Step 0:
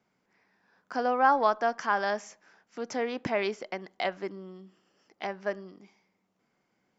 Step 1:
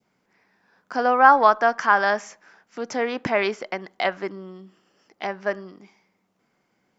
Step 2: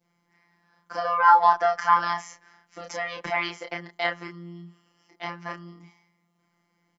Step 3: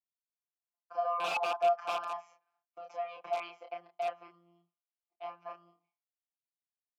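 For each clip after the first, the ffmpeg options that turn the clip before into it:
-af "adynamicequalizer=threshold=0.0141:dfrequency=1400:dqfactor=0.84:tfrequency=1400:tqfactor=0.84:attack=5:release=100:ratio=0.375:range=3:mode=boostabove:tftype=bell,volume=5dB"
-filter_complex "[0:a]acrossover=split=490[a][b];[a]acompressor=threshold=-37dB:ratio=6[c];[c][b]amix=inputs=2:normalize=0,afftfilt=real='hypot(re,im)*cos(PI*b)':imag='0':win_size=1024:overlap=0.75,asplit=2[d][e];[e]adelay=30,volume=-3.5dB[f];[d][f]amix=inputs=2:normalize=0"
-filter_complex "[0:a]aeval=exprs='(mod(5.01*val(0)+1,2)-1)/5.01':c=same,asplit=3[a][b][c];[a]bandpass=f=730:t=q:w=8,volume=0dB[d];[b]bandpass=f=1.09k:t=q:w=8,volume=-6dB[e];[c]bandpass=f=2.44k:t=q:w=8,volume=-9dB[f];[d][e][f]amix=inputs=3:normalize=0,agate=range=-33dB:threshold=-59dB:ratio=3:detection=peak"

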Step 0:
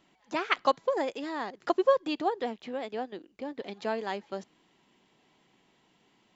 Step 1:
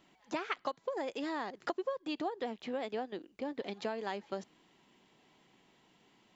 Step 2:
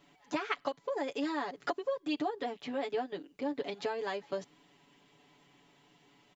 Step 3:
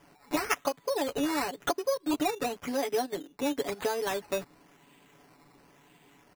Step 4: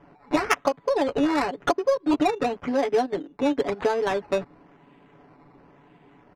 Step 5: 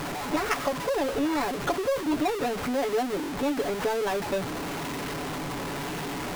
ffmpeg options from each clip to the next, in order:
-af "acompressor=threshold=-32dB:ratio=16"
-af "aecho=1:1:7:0.88"
-af "acrusher=samples=11:mix=1:aa=0.000001:lfo=1:lforange=6.6:lforate=0.96,volume=5dB"
-af "adynamicsmooth=sensitivity=2:basefreq=1.8k,volume=7.5dB"
-af "aeval=exprs='val(0)+0.5*0.112*sgn(val(0))':c=same,volume=-8dB"

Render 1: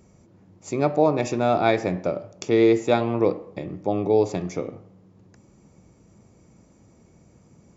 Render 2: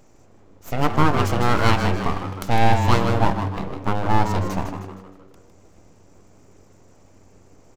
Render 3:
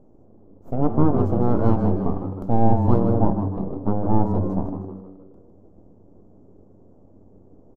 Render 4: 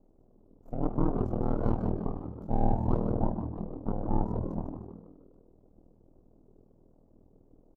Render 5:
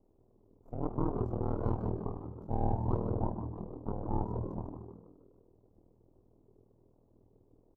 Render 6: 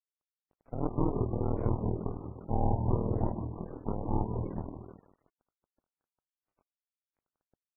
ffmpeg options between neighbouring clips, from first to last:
-filter_complex "[0:a]aeval=exprs='abs(val(0))':c=same,asplit=2[a][b];[b]asplit=5[c][d][e][f][g];[c]adelay=156,afreqshift=95,volume=-8dB[h];[d]adelay=312,afreqshift=190,volume=-15.1dB[i];[e]adelay=468,afreqshift=285,volume=-22.3dB[j];[f]adelay=624,afreqshift=380,volume=-29.4dB[k];[g]adelay=780,afreqshift=475,volume=-36.5dB[l];[h][i][j][k][l]amix=inputs=5:normalize=0[m];[a][m]amix=inputs=2:normalize=0,volume=3.5dB"
-af "firequalizer=gain_entry='entry(150,0);entry(210,5);entry(630,-1);entry(2000,-29)':delay=0.05:min_phase=1"
-af "aeval=exprs='val(0)*sin(2*PI*20*n/s)':c=same,volume=-7.5dB"
-af "equalizer=f=100:t=o:w=0.67:g=9,equalizer=f=400:t=o:w=0.67:g=6,equalizer=f=1k:t=o:w=0.67:g=7,volume=-8dB"
-af "aeval=exprs='sgn(val(0))*max(abs(val(0))-0.00211,0)':c=same,adynamicequalizer=threshold=0.00355:dfrequency=1100:dqfactor=0.75:tfrequency=1100:tqfactor=0.75:attack=5:release=100:ratio=0.375:range=2:mode=cutabove:tftype=bell,volume=4dB" -ar 12000 -c:a libmp3lame -b:a 8k

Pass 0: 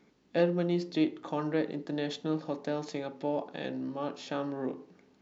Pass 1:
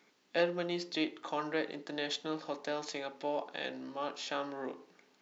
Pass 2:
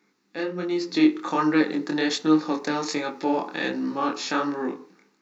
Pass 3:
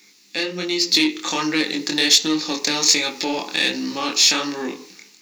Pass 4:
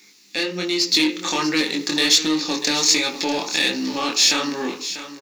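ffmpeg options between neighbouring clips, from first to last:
-af "highpass=f=1.2k:p=1,volume=4.5dB"
-af "equalizer=f=200:t=o:w=0.33:g=8,equalizer=f=315:t=o:w=0.33:g=7,equalizer=f=630:t=o:w=0.33:g=-11,equalizer=f=1.25k:t=o:w=0.33:g=3,equalizer=f=3.15k:t=o:w=0.33:g=-10,dynaudnorm=f=330:g=5:m=13dB,flanger=delay=19.5:depth=6.8:speed=1.3,volume=2.5dB"
-filter_complex "[0:a]asplit=2[a][b];[b]acompressor=threshold=-32dB:ratio=6,volume=3dB[c];[a][c]amix=inputs=2:normalize=0,asoftclip=type=tanh:threshold=-10dB,aexciter=amount=3.7:drive=9.2:freq=2.1k,volume=-3dB"
-filter_complex "[0:a]asplit=2[a][b];[b]volume=19.5dB,asoftclip=hard,volume=-19.5dB,volume=-5dB[c];[a][c]amix=inputs=2:normalize=0,aecho=1:1:643:0.237,volume=-3dB"

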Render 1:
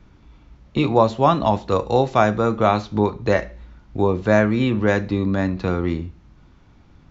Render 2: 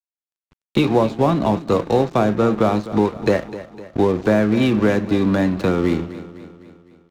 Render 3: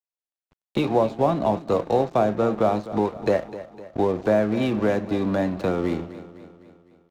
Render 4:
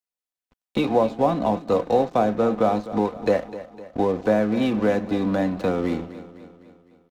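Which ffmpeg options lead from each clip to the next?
-filter_complex "[0:a]acrossover=split=150|440[a][b][c];[a]acompressor=threshold=-40dB:ratio=4[d];[b]acompressor=threshold=-23dB:ratio=4[e];[c]acompressor=threshold=-30dB:ratio=4[f];[d][e][f]amix=inputs=3:normalize=0,aeval=exprs='sgn(val(0))*max(abs(val(0))-0.0112,0)':c=same,aecho=1:1:254|508|762|1016|1270:0.178|0.0942|0.05|0.0265|0.014,volume=8.5dB"
-af "equalizer=f=660:t=o:w=0.95:g=7.5,volume=-7.5dB"
-af "aecho=1:1:4:0.37"

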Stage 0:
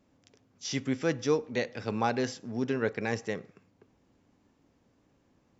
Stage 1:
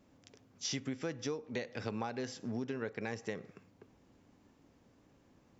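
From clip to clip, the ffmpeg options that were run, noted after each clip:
-af "acompressor=threshold=-36dB:ratio=16,volume=2dB"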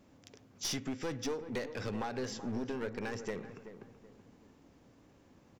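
-filter_complex "[0:a]aeval=exprs='clip(val(0),-1,0.0112)':c=same,asplit=2[a][b];[b]adelay=379,lowpass=f=1.4k:p=1,volume=-11dB,asplit=2[c][d];[d]adelay=379,lowpass=f=1.4k:p=1,volume=0.37,asplit=2[e][f];[f]adelay=379,lowpass=f=1.4k:p=1,volume=0.37,asplit=2[g][h];[h]adelay=379,lowpass=f=1.4k:p=1,volume=0.37[i];[a][c][e][g][i]amix=inputs=5:normalize=0,volume=3.5dB"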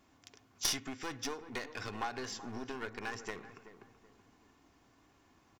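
-af "lowshelf=f=710:t=q:w=1.5:g=-6,aecho=1:1:2.8:0.37,aeval=exprs='0.0794*(cos(1*acos(clip(val(0)/0.0794,-1,1)))-cos(1*PI/2))+0.02*(cos(3*acos(clip(val(0)/0.0794,-1,1)))-cos(3*PI/2))+0.00112*(cos(5*acos(clip(val(0)/0.0794,-1,1)))-cos(5*PI/2))':c=same,volume=10dB"

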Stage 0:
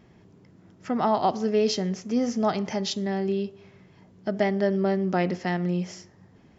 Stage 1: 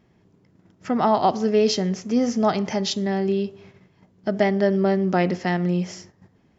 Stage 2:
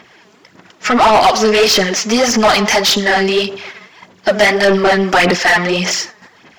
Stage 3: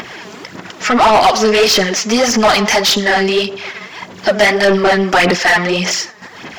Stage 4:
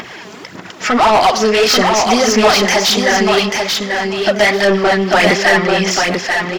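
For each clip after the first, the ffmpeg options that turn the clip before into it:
-af "agate=range=-9dB:threshold=-51dB:ratio=16:detection=peak,volume=4dB"
-filter_complex "[0:a]tiltshelf=f=830:g=-7,aphaser=in_gain=1:out_gain=1:delay=4.8:decay=0.6:speed=1.7:type=sinusoidal,asplit=2[a][b];[b]highpass=f=720:p=1,volume=28dB,asoftclip=type=tanh:threshold=-0.5dB[c];[a][c]amix=inputs=2:normalize=0,lowpass=f=3.9k:p=1,volume=-6dB,volume=-1dB"
-af "acompressor=mode=upward:threshold=-17dB:ratio=2.5"
-af "aecho=1:1:839|1678|2517:0.631|0.107|0.0182,volume=-1dB"

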